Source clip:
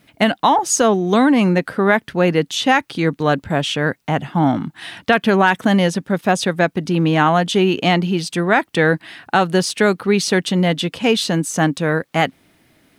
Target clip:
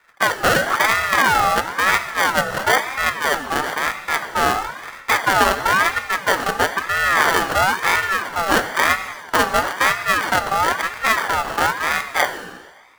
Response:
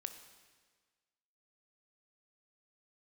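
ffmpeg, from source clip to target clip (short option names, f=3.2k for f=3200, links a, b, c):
-filter_complex "[0:a]acrusher=samples=33:mix=1:aa=0.000001[a];[1:a]atrim=start_sample=2205[b];[a][b]afir=irnorm=-1:irlink=0,aeval=exprs='val(0)*sin(2*PI*1300*n/s+1300*0.25/1*sin(2*PI*1*n/s))':c=same,volume=3.5dB"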